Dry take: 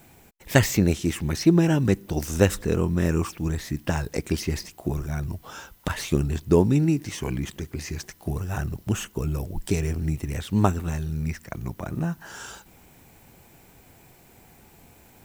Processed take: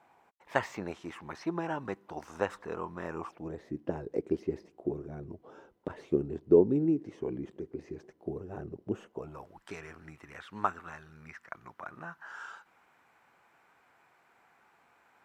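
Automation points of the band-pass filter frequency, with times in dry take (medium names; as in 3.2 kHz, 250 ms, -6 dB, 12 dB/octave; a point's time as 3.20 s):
band-pass filter, Q 2.2
3.07 s 990 Hz
3.75 s 400 Hz
8.95 s 400 Hz
9.52 s 1.3 kHz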